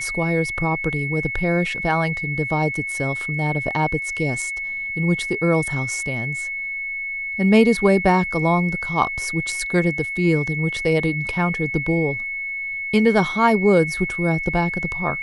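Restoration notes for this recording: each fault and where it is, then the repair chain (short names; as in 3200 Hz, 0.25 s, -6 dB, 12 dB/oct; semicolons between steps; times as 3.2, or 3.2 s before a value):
tone 2200 Hz -25 dBFS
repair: notch 2200 Hz, Q 30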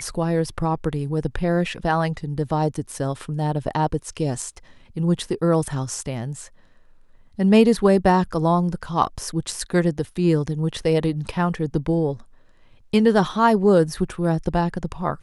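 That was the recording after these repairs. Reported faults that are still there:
none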